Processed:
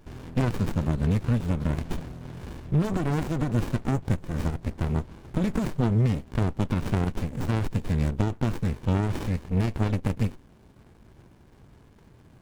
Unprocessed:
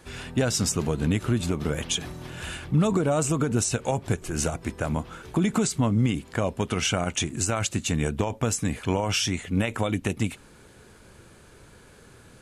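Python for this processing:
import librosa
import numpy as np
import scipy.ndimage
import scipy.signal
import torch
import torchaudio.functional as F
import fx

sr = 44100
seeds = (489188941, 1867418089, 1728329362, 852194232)

y = fx.running_max(x, sr, window=65)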